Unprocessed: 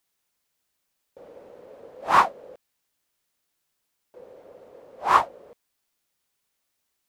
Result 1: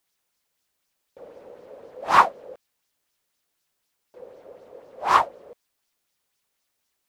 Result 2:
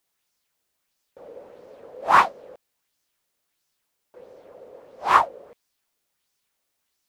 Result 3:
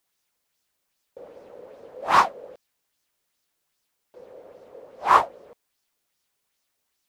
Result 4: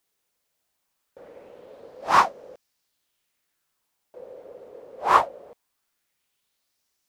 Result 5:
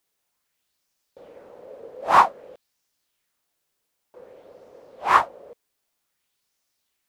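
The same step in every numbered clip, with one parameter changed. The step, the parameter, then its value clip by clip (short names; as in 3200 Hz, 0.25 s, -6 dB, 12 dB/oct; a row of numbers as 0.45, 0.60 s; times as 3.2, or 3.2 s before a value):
LFO bell, rate: 4, 1.5, 2.5, 0.21, 0.53 Hz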